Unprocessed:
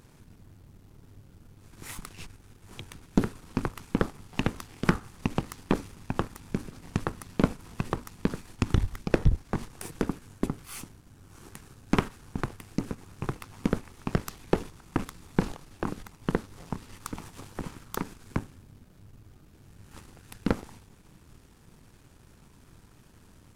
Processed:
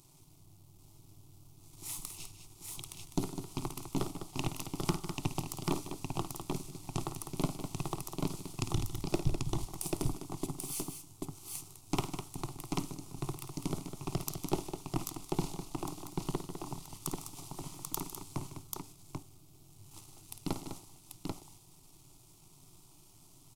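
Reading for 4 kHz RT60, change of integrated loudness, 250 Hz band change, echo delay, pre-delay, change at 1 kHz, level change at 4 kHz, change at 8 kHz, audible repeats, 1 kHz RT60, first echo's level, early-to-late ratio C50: no reverb audible, −6.5 dB, −7.5 dB, 53 ms, no reverb audible, −5.0 dB, 0.0 dB, +5.0 dB, 4, no reverb audible, −10.0 dB, no reverb audible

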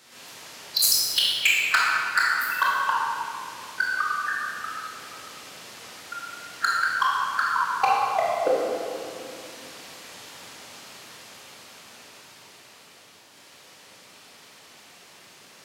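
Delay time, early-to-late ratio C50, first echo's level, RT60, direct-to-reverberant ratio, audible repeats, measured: no echo audible, −3.0 dB, no echo audible, 2.5 s, −6.0 dB, no echo audible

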